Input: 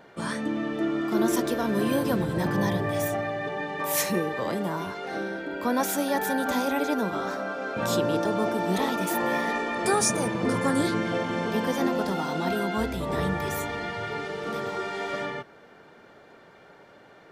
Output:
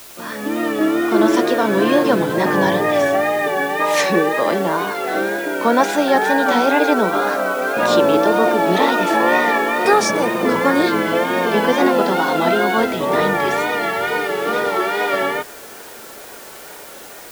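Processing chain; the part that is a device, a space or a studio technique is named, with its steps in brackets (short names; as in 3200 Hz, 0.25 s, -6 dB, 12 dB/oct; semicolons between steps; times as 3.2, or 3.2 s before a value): dictaphone (BPF 290–4100 Hz; AGC gain up to 11.5 dB; wow and flutter 72 cents; white noise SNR 22 dB); gain +1.5 dB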